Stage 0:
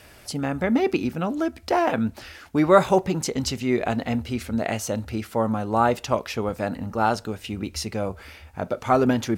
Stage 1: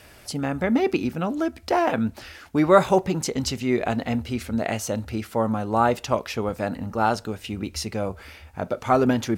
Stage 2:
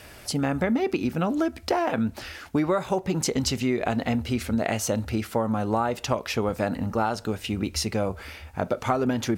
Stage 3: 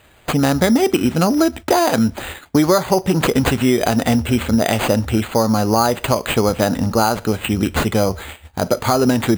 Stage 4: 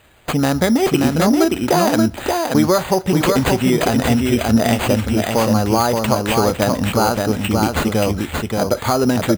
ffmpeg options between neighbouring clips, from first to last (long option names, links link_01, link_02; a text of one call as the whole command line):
ffmpeg -i in.wav -af anull out.wav
ffmpeg -i in.wav -af "acompressor=threshold=-23dB:ratio=16,volume=3dB" out.wav
ffmpeg -i in.wav -af "acrusher=samples=8:mix=1:aa=0.000001,agate=range=-14dB:threshold=-39dB:ratio=16:detection=peak,alimiter=level_in=12dB:limit=-1dB:release=50:level=0:latency=1,volume=-2.5dB" out.wav
ffmpeg -i in.wav -af "aecho=1:1:578:0.668,volume=-1dB" out.wav